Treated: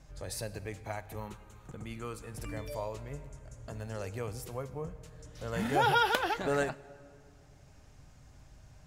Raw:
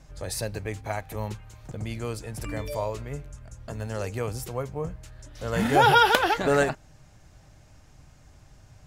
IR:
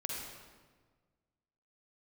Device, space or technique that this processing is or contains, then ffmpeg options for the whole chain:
ducked reverb: -filter_complex "[0:a]asplit=3[link_01][link_02][link_03];[1:a]atrim=start_sample=2205[link_04];[link_02][link_04]afir=irnorm=-1:irlink=0[link_05];[link_03]apad=whole_len=390753[link_06];[link_05][link_06]sidechaincompress=threshold=-37dB:ratio=6:attack=10:release=807,volume=-1.5dB[link_07];[link_01][link_07]amix=inputs=2:normalize=0,asettb=1/sr,asplit=3[link_08][link_09][link_10];[link_08]atrim=end=1.204[link_11];[link_09]atrim=start=1.2:end=2.34,asetpts=PTS-STARTPTS,afade=type=in:duration=0.004:curve=qsin,afade=type=out:start_time=1.136:duration=0.004:curve=qsin,equalizer=frequency=100:width_type=o:width=0.33:gain=-9,equalizer=frequency=630:width_type=o:width=0.33:gain=-7,equalizer=frequency=1250:width_type=o:width=0.33:gain=8,equalizer=frequency=5000:width_type=o:width=0.33:gain=-8[link_12];[link_10]atrim=start=2.336[link_13];[link_11][link_12]acrossfade=duration=0.004:curve1=hsin:curve2=qsin[link_14];[link_14][link_13]acrossfade=duration=0.004:curve1=qsin:curve2=hsin,volume=-9dB"

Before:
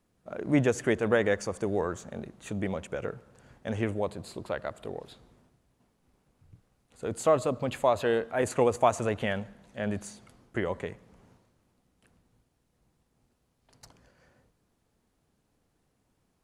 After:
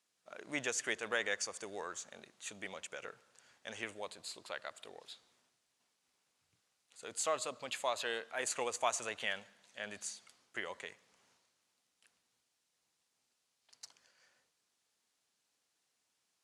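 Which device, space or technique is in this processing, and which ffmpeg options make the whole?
piezo pickup straight into a mixer: -af "lowpass=6000,aderivative,volume=8dB"

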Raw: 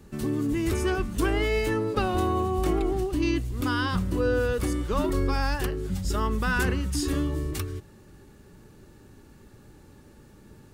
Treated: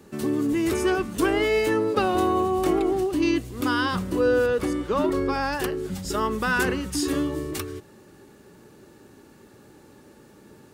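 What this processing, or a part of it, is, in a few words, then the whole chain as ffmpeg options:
filter by subtraction: -filter_complex "[0:a]asettb=1/sr,asplit=3[link_01][link_02][link_03];[link_01]atrim=end=4.464[link_04];[link_02]atrim=start=4.46:end=5.53,asetpts=PTS-STARTPTS,afade=type=in:duration=0.004:curve=qsin,afade=type=out:start_time=1.066:duration=0.004:curve=qsin,highshelf=frequency=5500:gain=-9[link_05];[link_03]atrim=start=5.526[link_06];[link_04][link_05]acrossfade=duration=0.004:curve1=hsin:curve2=qsin[link_07];[link_07][link_06]acrossfade=duration=0.004:curve1=qsin:curve2=hsin,asplit=2[link_08][link_09];[link_09]lowpass=390,volume=-1[link_10];[link_08][link_10]amix=inputs=2:normalize=0,volume=3dB"

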